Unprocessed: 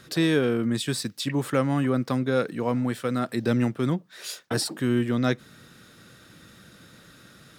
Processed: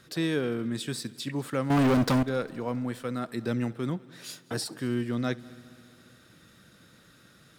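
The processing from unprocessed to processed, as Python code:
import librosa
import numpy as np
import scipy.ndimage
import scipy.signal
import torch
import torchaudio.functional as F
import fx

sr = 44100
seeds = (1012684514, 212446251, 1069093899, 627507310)

y = fx.leveller(x, sr, passes=5, at=(1.7, 2.23))
y = fx.echo_heads(y, sr, ms=67, heads='first and third', feedback_pct=68, wet_db=-24.0)
y = F.gain(torch.from_numpy(y), -6.0).numpy()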